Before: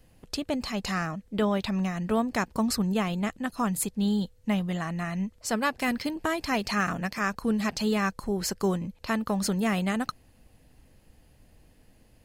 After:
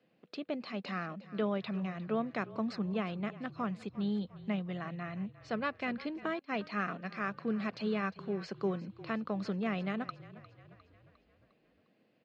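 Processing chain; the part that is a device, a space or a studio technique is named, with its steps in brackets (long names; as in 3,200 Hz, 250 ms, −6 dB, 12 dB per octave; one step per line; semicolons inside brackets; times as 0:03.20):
high-pass filter 180 Hz 24 dB per octave
frequency-shifting delay pedal into a guitar cabinet (echo with shifted repeats 354 ms, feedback 53%, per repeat −32 Hz, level −17.5 dB; loudspeaker in its box 79–3,600 Hz, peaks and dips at 260 Hz −4 dB, 900 Hz −8 dB, 1,800 Hz −4 dB, 3,100 Hz −4 dB)
0:04.97–0:05.61: low-pass filter 7,700 Hz
0:06.39–0:07.10: downward expander −30 dBFS
level −5.5 dB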